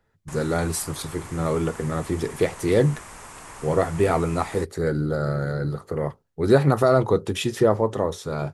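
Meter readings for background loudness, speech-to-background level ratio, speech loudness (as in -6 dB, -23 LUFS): -41.0 LUFS, 17.5 dB, -23.5 LUFS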